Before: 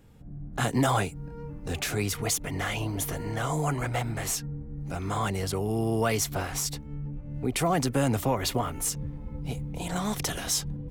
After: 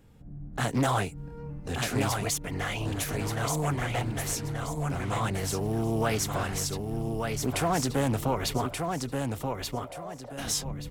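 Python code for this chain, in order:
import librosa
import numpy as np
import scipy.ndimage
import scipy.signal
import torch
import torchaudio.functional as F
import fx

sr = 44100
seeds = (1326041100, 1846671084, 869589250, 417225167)

y = fx.quant_float(x, sr, bits=4, at=(5.49, 6.07))
y = fx.ladder_bandpass(y, sr, hz=630.0, resonance_pct=75, at=(8.66, 10.37), fade=0.02)
y = fx.echo_feedback(y, sr, ms=1180, feedback_pct=29, wet_db=-4.5)
y = fx.doppler_dist(y, sr, depth_ms=0.29)
y = F.gain(torch.from_numpy(y), -1.5).numpy()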